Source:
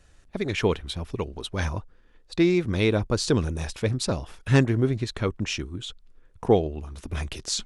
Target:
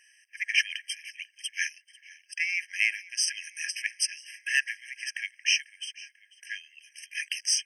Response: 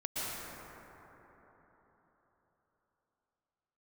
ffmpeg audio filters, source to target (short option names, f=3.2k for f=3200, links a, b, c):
-filter_complex "[0:a]asplit=5[a][b][c][d][e];[b]adelay=493,afreqshift=-46,volume=-21.5dB[f];[c]adelay=986,afreqshift=-92,volume=-26.4dB[g];[d]adelay=1479,afreqshift=-138,volume=-31.3dB[h];[e]adelay=1972,afreqshift=-184,volume=-36.1dB[i];[a][f][g][h][i]amix=inputs=5:normalize=0,aeval=exprs='0.562*sin(PI/2*1.58*val(0)/0.562)':c=same,afftfilt=real='re*eq(mod(floor(b*sr/1024/1600),2),1)':imag='im*eq(mod(floor(b*sr/1024/1600),2),1)':win_size=1024:overlap=0.75"